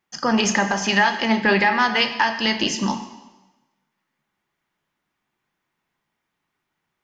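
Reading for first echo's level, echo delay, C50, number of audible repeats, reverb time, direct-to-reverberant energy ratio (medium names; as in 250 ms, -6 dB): no echo, no echo, 10.0 dB, no echo, 1.1 s, 7.0 dB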